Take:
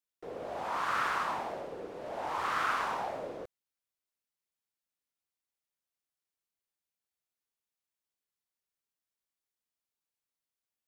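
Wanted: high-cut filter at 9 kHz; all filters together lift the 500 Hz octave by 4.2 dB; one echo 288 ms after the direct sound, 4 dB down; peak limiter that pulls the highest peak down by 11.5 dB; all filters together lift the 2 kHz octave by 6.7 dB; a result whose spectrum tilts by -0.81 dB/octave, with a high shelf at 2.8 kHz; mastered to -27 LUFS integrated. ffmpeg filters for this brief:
-af "lowpass=9000,equalizer=f=500:t=o:g=4.5,equalizer=f=2000:t=o:g=6.5,highshelf=f=2800:g=6,alimiter=level_in=1.33:limit=0.0631:level=0:latency=1,volume=0.75,aecho=1:1:288:0.631,volume=2.37"

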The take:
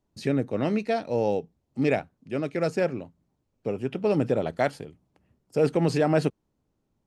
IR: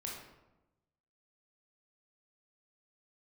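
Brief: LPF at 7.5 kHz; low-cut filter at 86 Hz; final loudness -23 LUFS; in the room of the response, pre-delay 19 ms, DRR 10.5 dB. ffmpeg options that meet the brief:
-filter_complex "[0:a]highpass=86,lowpass=7500,asplit=2[s0][s1];[1:a]atrim=start_sample=2205,adelay=19[s2];[s1][s2]afir=irnorm=-1:irlink=0,volume=0.316[s3];[s0][s3]amix=inputs=2:normalize=0,volume=1.5"

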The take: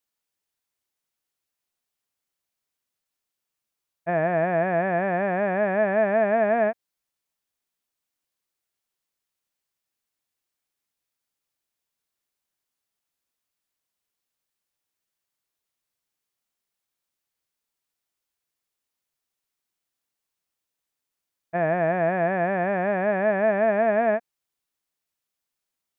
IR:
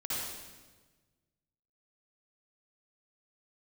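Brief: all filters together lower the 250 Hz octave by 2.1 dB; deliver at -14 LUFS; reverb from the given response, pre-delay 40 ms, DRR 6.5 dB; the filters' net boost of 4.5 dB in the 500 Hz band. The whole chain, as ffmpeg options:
-filter_complex "[0:a]equalizer=f=250:t=o:g=-5.5,equalizer=f=500:t=o:g=7.5,asplit=2[s0][s1];[1:a]atrim=start_sample=2205,adelay=40[s2];[s1][s2]afir=irnorm=-1:irlink=0,volume=0.282[s3];[s0][s3]amix=inputs=2:normalize=0,volume=1.78"

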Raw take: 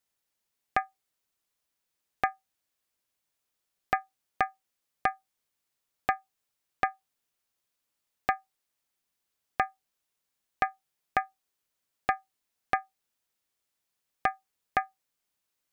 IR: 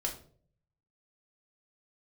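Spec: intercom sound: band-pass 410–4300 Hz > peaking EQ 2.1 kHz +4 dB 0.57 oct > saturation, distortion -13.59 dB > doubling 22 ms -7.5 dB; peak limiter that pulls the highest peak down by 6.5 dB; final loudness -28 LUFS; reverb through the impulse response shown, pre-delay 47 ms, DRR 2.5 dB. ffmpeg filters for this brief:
-filter_complex "[0:a]alimiter=limit=0.168:level=0:latency=1,asplit=2[s0][s1];[1:a]atrim=start_sample=2205,adelay=47[s2];[s1][s2]afir=irnorm=-1:irlink=0,volume=0.562[s3];[s0][s3]amix=inputs=2:normalize=0,highpass=410,lowpass=4300,equalizer=f=2100:t=o:w=0.57:g=4,asoftclip=threshold=0.0562,asplit=2[s4][s5];[s5]adelay=22,volume=0.422[s6];[s4][s6]amix=inputs=2:normalize=0,volume=2.51"

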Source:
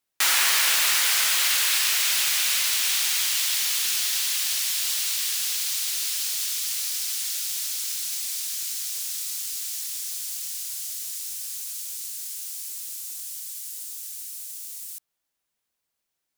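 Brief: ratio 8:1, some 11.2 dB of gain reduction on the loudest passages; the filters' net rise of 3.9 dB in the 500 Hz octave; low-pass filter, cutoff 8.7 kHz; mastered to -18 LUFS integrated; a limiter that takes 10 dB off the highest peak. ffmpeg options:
-af "lowpass=8700,equalizer=f=500:t=o:g=5,acompressor=threshold=0.0282:ratio=8,volume=5.96,alimiter=limit=0.316:level=0:latency=1"

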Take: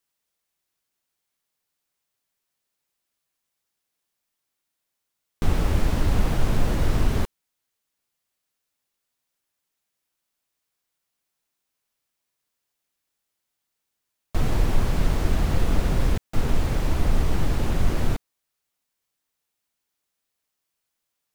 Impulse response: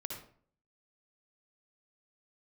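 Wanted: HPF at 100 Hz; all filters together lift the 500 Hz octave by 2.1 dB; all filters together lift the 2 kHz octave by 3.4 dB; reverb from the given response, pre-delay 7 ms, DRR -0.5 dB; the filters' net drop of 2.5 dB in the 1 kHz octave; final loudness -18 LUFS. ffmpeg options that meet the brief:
-filter_complex "[0:a]highpass=100,equalizer=f=500:t=o:g=4,equalizer=f=1000:t=o:g=-6.5,equalizer=f=2000:t=o:g=6,asplit=2[s0][s1];[1:a]atrim=start_sample=2205,adelay=7[s2];[s1][s2]afir=irnorm=-1:irlink=0,volume=1.19[s3];[s0][s3]amix=inputs=2:normalize=0,volume=2.11"

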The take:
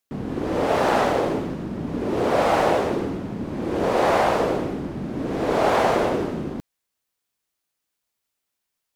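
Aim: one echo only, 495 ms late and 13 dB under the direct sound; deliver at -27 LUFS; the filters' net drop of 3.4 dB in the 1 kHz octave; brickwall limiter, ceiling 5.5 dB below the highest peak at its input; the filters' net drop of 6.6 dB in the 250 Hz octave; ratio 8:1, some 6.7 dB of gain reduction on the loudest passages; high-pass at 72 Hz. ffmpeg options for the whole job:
-af "highpass=72,equalizer=f=250:t=o:g=-9,equalizer=f=1000:t=o:g=-4,acompressor=threshold=0.0562:ratio=8,alimiter=limit=0.0794:level=0:latency=1,aecho=1:1:495:0.224,volume=1.78"

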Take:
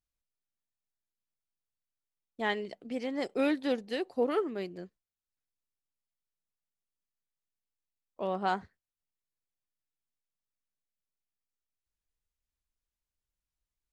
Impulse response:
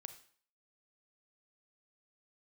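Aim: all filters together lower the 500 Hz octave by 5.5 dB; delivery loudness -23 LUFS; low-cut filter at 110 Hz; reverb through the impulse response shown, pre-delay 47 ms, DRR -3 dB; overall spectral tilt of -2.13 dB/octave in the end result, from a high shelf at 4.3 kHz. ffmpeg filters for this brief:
-filter_complex "[0:a]highpass=110,equalizer=f=500:t=o:g=-6.5,highshelf=f=4300:g=8,asplit=2[s0][s1];[1:a]atrim=start_sample=2205,adelay=47[s2];[s1][s2]afir=irnorm=-1:irlink=0,volume=2.66[s3];[s0][s3]amix=inputs=2:normalize=0,volume=2.37"

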